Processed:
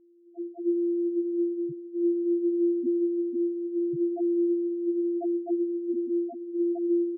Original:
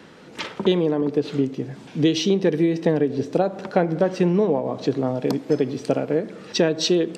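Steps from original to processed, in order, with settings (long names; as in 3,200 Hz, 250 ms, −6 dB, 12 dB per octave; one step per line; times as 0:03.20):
samples sorted by size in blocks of 128 samples
low-pass filter 5,900 Hz 24 dB per octave
on a send at −13 dB: convolution reverb RT60 3.3 s, pre-delay 16 ms
on the sum: pitch-shifted copies added −5 semitones −4 dB, +3 semitones −14 dB, +12 semitones −16 dB
in parallel at −4.5 dB: fuzz pedal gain 28 dB, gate −35 dBFS
on the sum: spectral peaks only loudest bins 1
level −5 dB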